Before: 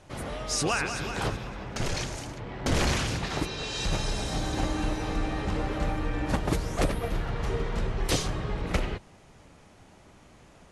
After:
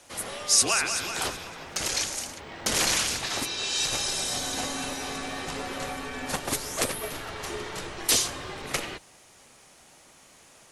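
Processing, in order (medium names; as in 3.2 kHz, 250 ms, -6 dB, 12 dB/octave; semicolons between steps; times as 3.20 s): RIAA curve recording; frequency shift -41 Hz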